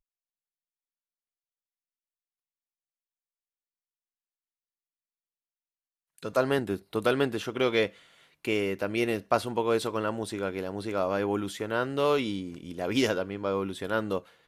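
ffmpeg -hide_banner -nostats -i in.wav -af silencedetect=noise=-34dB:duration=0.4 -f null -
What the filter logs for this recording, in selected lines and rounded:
silence_start: 0.00
silence_end: 6.23 | silence_duration: 6.23
silence_start: 7.87
silence_end: 8.45 | silence_duration: 0.57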